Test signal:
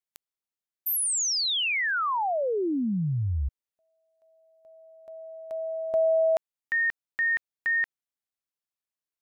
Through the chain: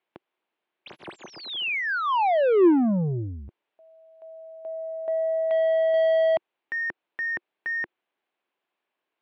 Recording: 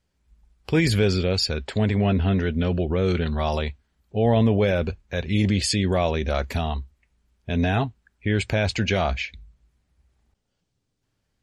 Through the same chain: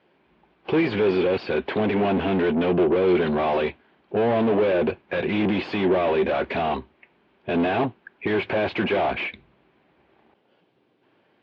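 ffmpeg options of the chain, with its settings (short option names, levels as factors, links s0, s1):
-filter_complex "[0:a]asplit=2[s0][s1];[s1]highpass=f=720:p=1,volume=50.1,asoftclip=type=tanh:threshold=0.355[s2];[s0][s2]amix=inputs=2:normalize=0,lowpass=f=1500:p=1,volume=0.501,highpass=160,equalizer=f=350:t=q:w=4:g=7,equalizer=f=1300:t=q:w=4:g=-5,equalizer=f=1900:t=q:w=4:g=-4,lowpass=f=3200:w=0.5412,lowpass=f=3200:w=1.3066,volume=0.562"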